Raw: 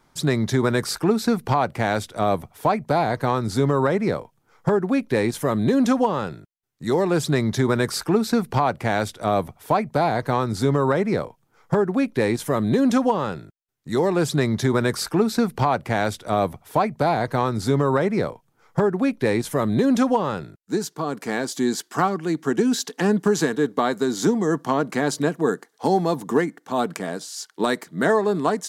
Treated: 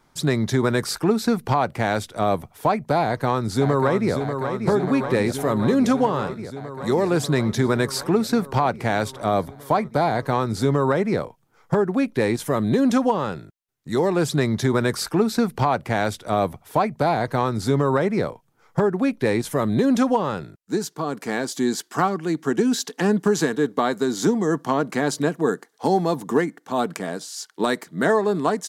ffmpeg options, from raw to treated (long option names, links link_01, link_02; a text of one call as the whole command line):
ffmpeg -i in.wav -filter_complex "[0:a]asplit=2[link_01][link_02];[link_02]afade=type=in:start_time=3.02:duration=0.01,afade=type=out:start_time=4.14:duration=0.01,aecho=0:1:590|1180|1770|2360|2950|3540|4130|4720|5310|5900|6490|7080:0.446684|0.357347|0.285877|0.228702|0.182962|0.146369|0.117095|0.0936763|0.0749411|0.0599529|0.0479623|0.0383698[link_03];[link_01][link_03]amix=inputs=2:normalize=0,asettb=1/sr,asplit=3[link_04][link_05][link_06];[link_04]atrim=end=9.264[link_07];[link_05]atrim=start=9.26:end=10.15,asetpts=PTS-STARTPTS,afade=type=in:duration=0.004:curve=qsin,afade=type=out:start_time=0.886:duration=0.004:curve=qsin,bandreject=frequency=2600:width=9.7[link_08];[link_06]atrim=start=10.146[link_09];[link_07][link_08]acrossfade=duration=0.004:curve1=hsin:curve2=qsin[link_10];[link_10][link_09]acrossfade=duration=0.004:curve1=qsin:curve2=hsin" out.wav